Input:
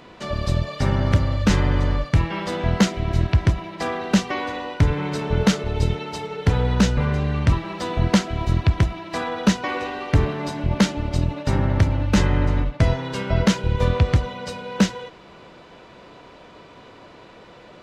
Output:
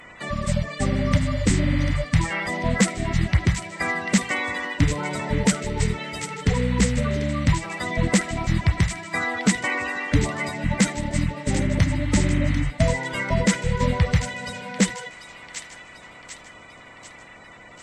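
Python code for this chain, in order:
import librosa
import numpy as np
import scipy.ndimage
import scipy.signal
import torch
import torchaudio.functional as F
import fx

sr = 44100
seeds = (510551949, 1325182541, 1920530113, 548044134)

y = fx.spec_quant(x, sr, step_db=30)
y = fx.graphic_eq_31(y, sr, hz=(400, 2000, 8000), db=(-6, 12, 12))
y = fx.echo_wet_highpass(y, sr, ms=743, feedback_pct=53, hz=1900.0, wet_db=-8.5)
y = y * 10.0 ** (-1.5 / 20.0)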